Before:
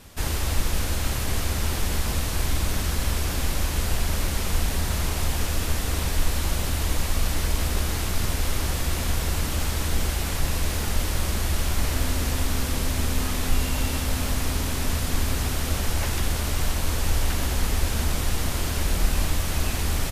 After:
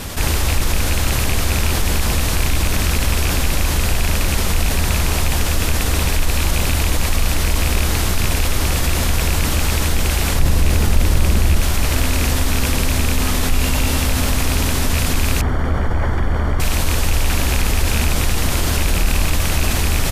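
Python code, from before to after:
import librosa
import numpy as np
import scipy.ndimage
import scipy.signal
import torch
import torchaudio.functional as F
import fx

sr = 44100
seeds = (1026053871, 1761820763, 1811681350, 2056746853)

y = fx.rattle_buzz(x, sr, strikes_db=-22.0, level_db=-19.0)
y = fx.low_shelf(y, sr, hz=490.0, db=7.5, at=(10.35, 11.61))
y = fx.savgol(y, sr, points=41, at=(15.41, 16.6))
y = fx.env_flatten(y, sr, amount_pct=50)
y = F.gain(torch.from_numpy(y), 1.0).numpy()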